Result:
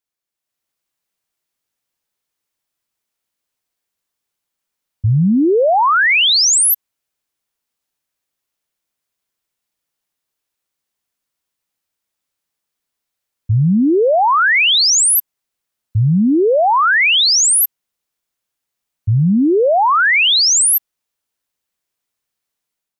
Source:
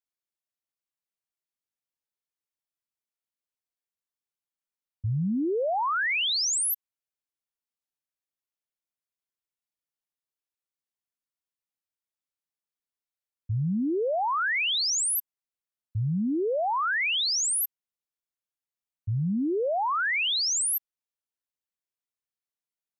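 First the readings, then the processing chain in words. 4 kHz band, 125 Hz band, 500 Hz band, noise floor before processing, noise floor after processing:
+14.0 dB, +14.0 dB, +14.0 dB, under -85 dBFS, -80 dBFS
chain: level rider gain up to 7.5 dB; trim +6.5 dB

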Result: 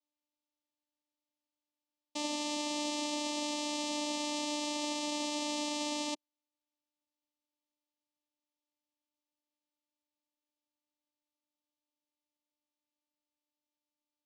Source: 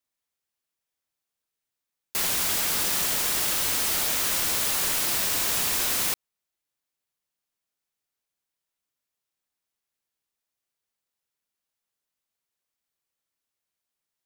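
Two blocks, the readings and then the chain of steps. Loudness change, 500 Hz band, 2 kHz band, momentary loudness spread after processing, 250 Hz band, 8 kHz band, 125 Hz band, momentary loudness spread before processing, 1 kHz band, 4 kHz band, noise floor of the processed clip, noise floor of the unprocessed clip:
-12.5 dB, -1.0 dB, -12.0 dB, 2 LU, +5.5 dB, -14.5 dB, under -20 dB, 2 LU, -3.5 dB, -7.5 dB, under -85 dBFS, under -85 dBFS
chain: vocoder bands 4, saw 297 Hz; static phaser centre 400 Hz, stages 6; trim -3 dB

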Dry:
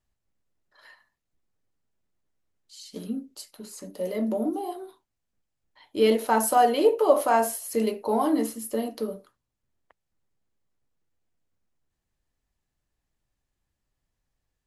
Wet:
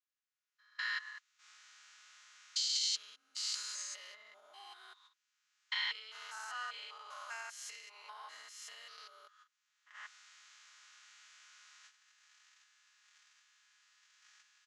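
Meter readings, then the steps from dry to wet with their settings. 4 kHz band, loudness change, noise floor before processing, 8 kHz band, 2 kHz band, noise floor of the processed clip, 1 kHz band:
+2.5 dB, -15.0 dB, -82 dBFS, -6.0 dB, -3.5 dB, under -85 dBFS, -23.5 dB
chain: spectrogram pixelated in time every 200 ms; recorder AGC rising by 20 dB/s; gate -48 dBFS, range -13 dB; comb 4.8 ms, depth 61%; peak limiter -16.5 dBFS, peak gain reduction 11.5 dB; compression 2.5:1, threshold -38 dBFS, peak gain reduction 11.5 dB; elliptic band-pass 1.3–6.7 kHz, stop band 80 dB; trim +4 dB

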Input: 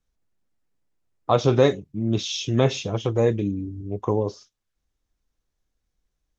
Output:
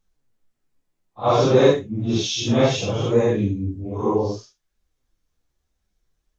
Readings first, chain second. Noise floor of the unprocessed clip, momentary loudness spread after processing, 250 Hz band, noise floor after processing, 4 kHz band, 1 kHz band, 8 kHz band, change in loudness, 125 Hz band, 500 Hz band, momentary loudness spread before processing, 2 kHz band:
-80 dBFS, 11 LU, +3.5 dB, -76 dBFS, +3.5 dB, +4.0 dB, no reading, +3.0 dB, +1.0 dB, +3.5 dB, 11 LU, +3.5 dB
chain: phase randomisation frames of 200 ms; flange 0.63 Hz, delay 4.5 ms, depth 9.8 ms, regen +54%; trim +8 dB

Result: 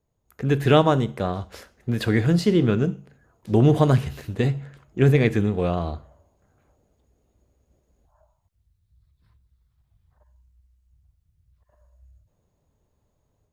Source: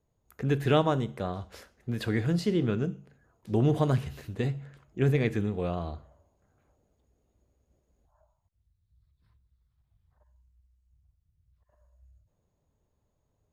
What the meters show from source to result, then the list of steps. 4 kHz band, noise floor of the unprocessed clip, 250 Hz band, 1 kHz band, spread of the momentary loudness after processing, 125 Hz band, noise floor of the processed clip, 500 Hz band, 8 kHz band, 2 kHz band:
+7.5 dB, -76 dBFS, +7.5 dB, +7.5 dB, 16 LU, +7.5 dB, -72 dBFS, +7.5 dB, no reading, +7.5 dB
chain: level rider gain up to 5.5 dB; in parallel at -10 dB: crossover distortion -39.5 dBFS

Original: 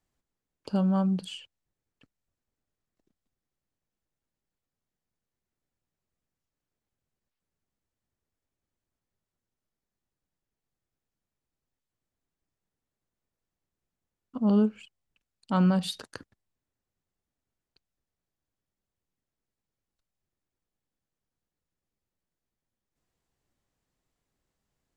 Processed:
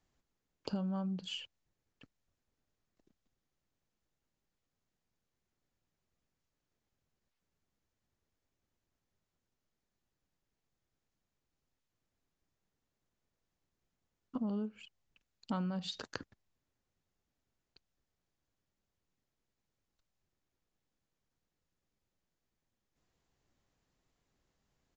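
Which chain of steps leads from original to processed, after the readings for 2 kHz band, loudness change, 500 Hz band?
-6.5 dB, -13.0 dB, -12.5 dB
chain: compression 16:1, threshold -36 dBFS, peak gain reduction 18 dB; resampled via 16 kHz; trim +2 dB

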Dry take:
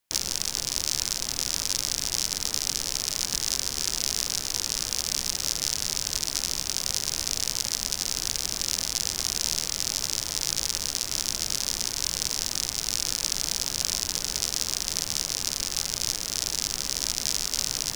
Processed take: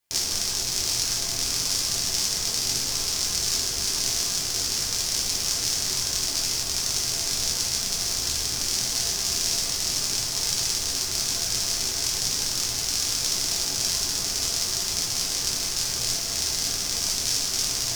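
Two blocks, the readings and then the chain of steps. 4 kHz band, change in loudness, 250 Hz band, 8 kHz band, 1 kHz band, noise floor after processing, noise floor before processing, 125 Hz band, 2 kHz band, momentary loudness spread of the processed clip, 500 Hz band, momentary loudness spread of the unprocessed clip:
+3.0 dB, +2.5 dB, +2.5 dB, +2.5 dB, +2.5 dB, -29 dBFS, -35 dBFS, +3.5 dB, +2.5 dB, 1 LU, +3.5 dB, 1 LU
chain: two-slope reverb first 0.48 s, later 1.8 s, DRR -3.5 dB; trim -2.5 dB

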